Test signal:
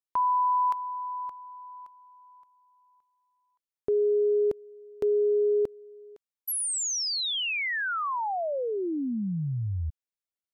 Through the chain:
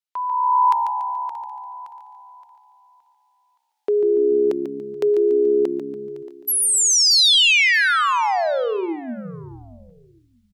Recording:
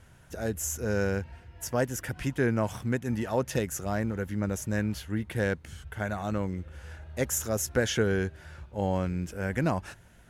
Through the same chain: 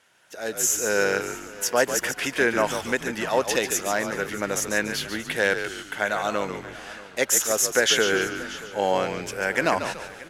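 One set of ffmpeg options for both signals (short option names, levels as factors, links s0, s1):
-filter_complex "[0:a]highpass=410,equalizer=f=3600:t=o:w=2.3:g=7,asplit=2[s0][s1];[s1]asplit=4[s2][s3][s4][s5];[s2]adelay=143,afreqshift=-67,volume=0.376[s6];[s3]adelay=286,afreqshift=-134,volume=0.143[s7];[s4]adelay=429,afreqshift=-201,volume=0.0543[s8];[s5]adelay=572,afreqshift=-268,volume=0.0207[s9];[s6][s7][s8][s9]amix=inputs=4:normalize=0[s10];[s0][s10]amix=inputs=2:normalize=0,dynaudnorm=f=140:g=7:m=3.98,asplit=2[s11][s12];[s12]aecho=0:1:629|1258:0.119|0.0273[s13];[s11][s13]amix=inputs=2:normalize=0,volume=0.668"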